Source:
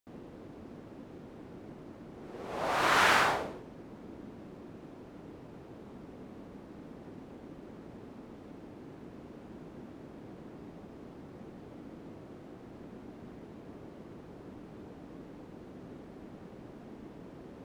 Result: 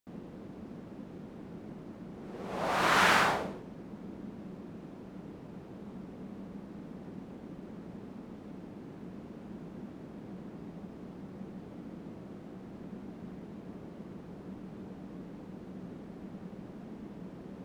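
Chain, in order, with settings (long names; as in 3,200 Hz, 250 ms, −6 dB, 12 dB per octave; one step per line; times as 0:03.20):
parametric band 190 Hz +9.5 dB 0.4 octaves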